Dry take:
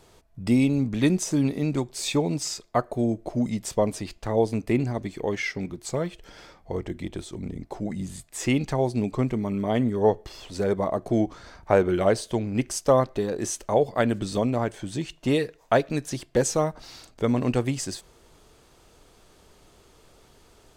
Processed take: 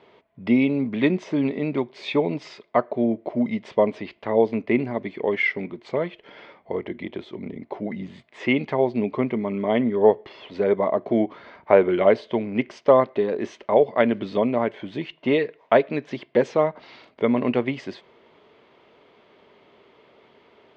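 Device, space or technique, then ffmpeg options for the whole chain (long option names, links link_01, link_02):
kitchen radio: -af "highpass=170,equalizer=frequency=230:width_type=q:width=4:gain=5,equalizer=frequency=410:width_type=q:width=4:gain=6,equalizer=frequency=600:width_type=q:width=4:gain=6,equalizer=frequency=1000:width_type=q:width=4:gain=6,equalizer=frequency=2100:width_type=q:width=4:gain=9,equalizer=frequency=3100:width_type=q:width=4:gain=4,lowpass=frequency=3600:width=0.5412,lowpass=frequency=3600:width=1.3066,volume=-1dB"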